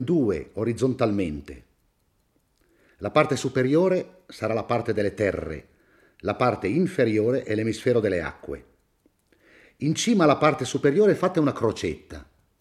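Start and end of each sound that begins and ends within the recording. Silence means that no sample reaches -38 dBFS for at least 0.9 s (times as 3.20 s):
3.02–8.60 s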